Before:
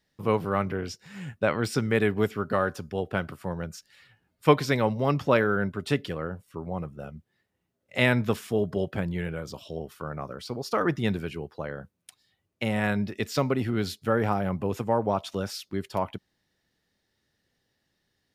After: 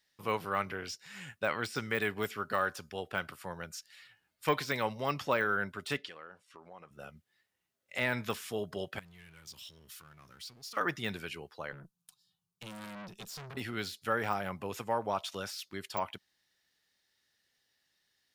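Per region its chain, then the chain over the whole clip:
0:05.97–0:06.91: low-pass filter 6,500 Hz + parametric band 88 Hz −15 dB 2 octaves + downward compressor 3 to 1, threshold −40 dBFS
0:08.99–0:10.77: guitar amp tone stack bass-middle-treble 6-0-2 + power curve on the samples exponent 0.7 + envelope flattener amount 50%
0:11.72–0:13.57: low shelf with overshoot 230 Hz +8.5 dB, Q 3 + phaser with its sweep stopped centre 400 Hz, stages 8 + tube saturation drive 33 dB, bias 0.6
whole clip: de-essing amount 100%; tilt shelving filter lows −8.5 dB, about 760 Hz; level −6 dB

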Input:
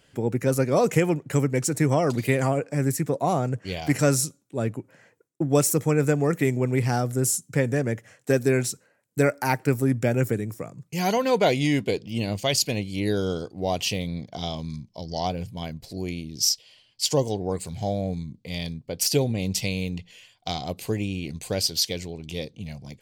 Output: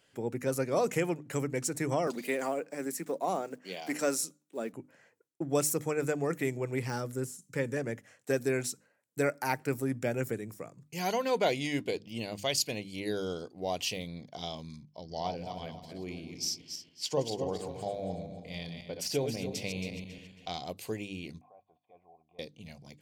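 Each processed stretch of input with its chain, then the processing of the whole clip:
0:02.07–0:04.74: one scale factor per block 7 bits + Chebyshev high-pass filter 190 Hz, order 4
0:06.87–0:07.77: de-essing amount 70% + Butterworth band-reject 700 Hz, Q 4.5
0:14.84–0:20.54: feedback delay that plays each chunk backwards 137 ms, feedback 54%, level −6 dB + high-shelf EQ 5,800 Hz −11.5 dB
0:21.41–0:22.39: compressor whose output falls as the input rises −30 dBFS + formant resonators in series a
whole clip: low-shelf EQ 150 Hz −10.5 dB; mains-hum notches 50/100/150/200/250/300 Hz; level −6.5 dB

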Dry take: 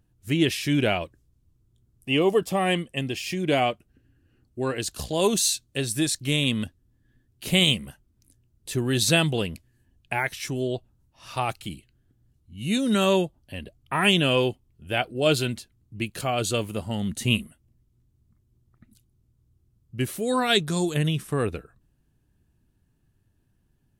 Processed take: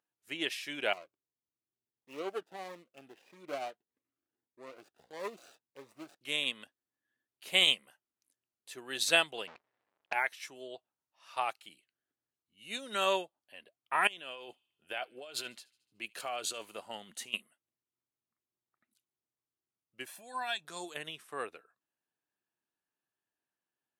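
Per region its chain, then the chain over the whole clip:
0:00.93–0:06.21: running median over 41 samples + phaser whose notches keep moving one way rising 1.6 Hz
0:09.47–0:10.13: each half-wave held at its own peak + high-frequency loss of the air 180 metres
0:14.07–0:17.34: compressor whose output falls as the input rises −28 dBFS + delay with a high-pass on its return 74 ms, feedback 60%, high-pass 2,600 Hz, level −22 dB
0:20.06–0:20.65: downward compressor 4 to 1, threshold −27 dBFS + comb filter 1.2 ms, depth 84%
whole clip: high-pass filter 730 Hz 12 dB per octave; high-shelf EQ 3,800 Hz −7.5 dB; expander for the loud parts 1.5 to 1, over −40 dBFS

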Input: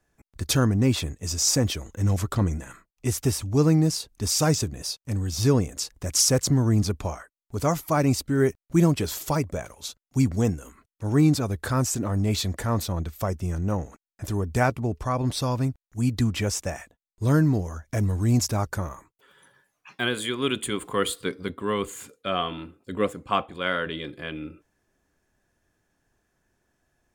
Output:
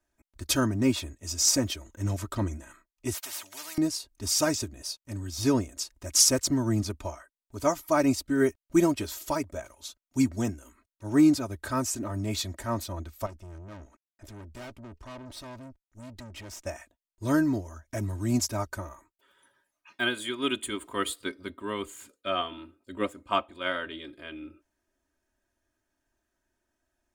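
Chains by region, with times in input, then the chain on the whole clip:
0:03.14–0:03.78: high-pass filter 830 Hz + every bin compressed towards the loudest bin 4 to 1
0:13.26–0:16.66: high-shelf EQ 8,600 Hz −8 dB + tube saturation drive 31 dB, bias 0.7
whole clip: low-shelf EQ 440 Hz −3 dB; comb filter 3.2 ms, depth 71%; expander for the loud parts 1.5 to 1, over −32 dBFS

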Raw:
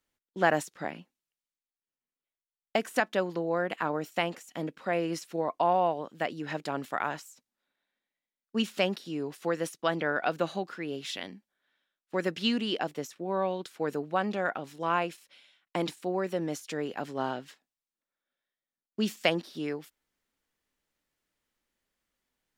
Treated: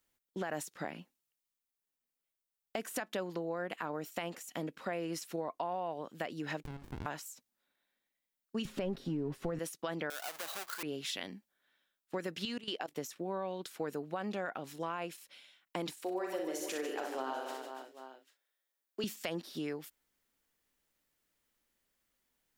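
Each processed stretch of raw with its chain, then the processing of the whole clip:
0:06.63–0:07.06: high-pass filter 640 Hz + downward compressor 3 to 1, threshold −42 dBFS + windowed peak hold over 65 samples
0:08.65–0:09.59: mu-law and A-law mismatch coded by mu + spectral tilt −4 dB per octave + comb filter 7.4 ms, depth 35%
0:10.10–0:10.83: each half-wave held at its own peak + high-pass filter 770 Hz
0:12.45–0:12.96: parametric band 130 Hz −9.5 dB 1.8 octaves + output level in coarse steps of 17 dB
0:16.01–0:19.04: high-pass filter 300 Hz 24 dB per octave + double-tracking delay 38 ms −9 dB + reverse bouncing-ball delay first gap 60 ms, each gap 1.5×, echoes 5
whole clip: high-shelf EQ 9,500 Hz +9 dB; brickwall limiter −19 dBFS; downward compressor 3 to 1, threshold −36 dBFS

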